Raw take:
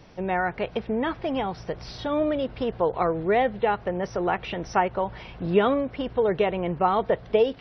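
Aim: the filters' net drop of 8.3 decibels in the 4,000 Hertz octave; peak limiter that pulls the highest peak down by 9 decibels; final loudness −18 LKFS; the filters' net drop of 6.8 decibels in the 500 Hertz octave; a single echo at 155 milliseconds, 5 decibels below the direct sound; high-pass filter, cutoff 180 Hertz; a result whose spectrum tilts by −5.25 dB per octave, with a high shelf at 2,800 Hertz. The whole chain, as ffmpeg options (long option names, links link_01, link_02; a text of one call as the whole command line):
ffmpeg -i in.wav -af "highpass=180,equalizer=frequency=500:width_type=o:gain=-8,highshelf=frequency=2800:gain=-5.5,equalizer=frequency=4000:width_type=o:gain=-7.5,alimiter=limit=-20.5dB:level=0:latency=1,aecho=1:1:155:0.562,volume=13.5dB" out.wav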